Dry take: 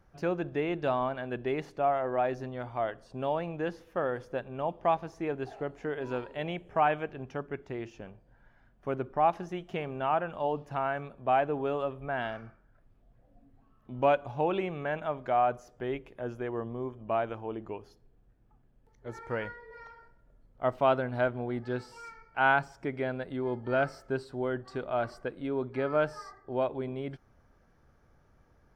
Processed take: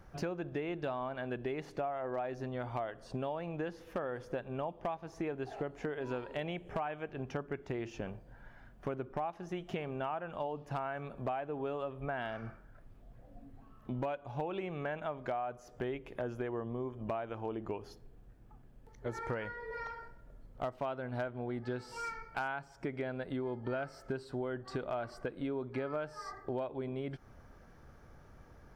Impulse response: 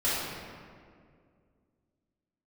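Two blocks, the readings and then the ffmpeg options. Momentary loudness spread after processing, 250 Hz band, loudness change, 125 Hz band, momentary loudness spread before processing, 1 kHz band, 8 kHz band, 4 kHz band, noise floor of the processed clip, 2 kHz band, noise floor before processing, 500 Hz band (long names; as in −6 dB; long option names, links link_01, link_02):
15 LU, −4.0 dB, −7.5 dB, −3.0 dB, 12 LU, −9.5 dB, can't be measured, −5.5 dB, −58 dBFS, −8.0 dB, −64 dBFS, −7.0 dB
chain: -af "acompressor=threshold=-41dB:ratio=12,volume=34dB,asoftclip=hard,volume=-34dB,volume=7dB"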